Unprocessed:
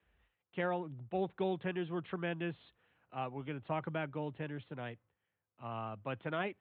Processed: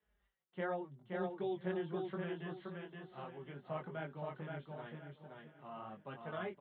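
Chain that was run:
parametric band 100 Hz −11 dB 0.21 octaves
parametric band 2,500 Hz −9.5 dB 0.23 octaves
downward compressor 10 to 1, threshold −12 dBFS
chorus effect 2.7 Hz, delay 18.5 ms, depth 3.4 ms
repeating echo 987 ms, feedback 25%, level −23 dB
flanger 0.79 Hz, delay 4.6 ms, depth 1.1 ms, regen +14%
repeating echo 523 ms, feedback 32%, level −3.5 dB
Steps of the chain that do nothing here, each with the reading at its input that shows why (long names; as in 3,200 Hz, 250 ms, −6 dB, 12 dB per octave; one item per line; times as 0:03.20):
downward compressor, threshold −12 dBFS: peak of its input −23.0 dBFS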